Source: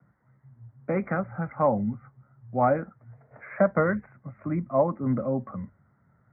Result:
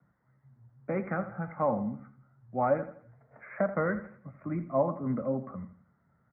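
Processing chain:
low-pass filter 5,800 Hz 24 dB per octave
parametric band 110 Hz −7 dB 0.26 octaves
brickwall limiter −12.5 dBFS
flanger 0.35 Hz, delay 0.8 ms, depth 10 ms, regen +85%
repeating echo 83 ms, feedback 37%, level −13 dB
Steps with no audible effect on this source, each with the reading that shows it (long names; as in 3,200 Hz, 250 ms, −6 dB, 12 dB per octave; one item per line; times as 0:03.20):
low-pass filter 5,800 Hz: nothing at its input above 2,200 Hz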